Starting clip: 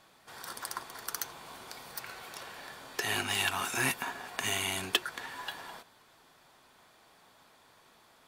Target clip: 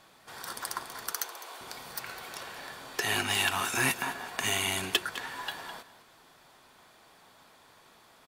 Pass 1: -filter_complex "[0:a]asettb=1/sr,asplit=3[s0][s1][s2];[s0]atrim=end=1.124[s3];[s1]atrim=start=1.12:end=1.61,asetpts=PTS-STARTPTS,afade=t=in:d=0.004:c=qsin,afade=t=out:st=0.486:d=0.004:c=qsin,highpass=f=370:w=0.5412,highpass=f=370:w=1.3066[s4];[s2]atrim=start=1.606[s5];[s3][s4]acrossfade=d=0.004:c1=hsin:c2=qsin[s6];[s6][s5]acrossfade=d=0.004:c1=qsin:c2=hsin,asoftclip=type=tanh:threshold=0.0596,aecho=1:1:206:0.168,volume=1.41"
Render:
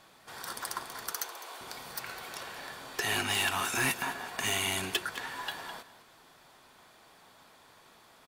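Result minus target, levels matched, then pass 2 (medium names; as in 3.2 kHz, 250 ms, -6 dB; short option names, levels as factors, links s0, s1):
saturation: distortion +8 dB
-filter_complex "[0:a]asettb=1/sr,asplit=3[s0][s1][s2];[s0]atrim=end=1.124[s3];[s1]atrim=start=1.12:end=1.61,asetpts=PTS-STARTPTS,afade=t=in:d=0.004:c=qsin,afade=t=out:st=0.486:d=0.004:c=qsin,highpass=f=370:w=0.5412,highpass=f=370:w=1.3066[s4];[s2]atrim=start=1.606[s5];[s3][s4]acrossfade=d=0.004:c1=hsin:c2=qsin[s6];[s6][s5]acrossfade=d=0.004:c1=qsin:c2=hsin,asoftclip=type=tanh:threshold=0.178,aecho=1:1:206:0.168,volume=1.41"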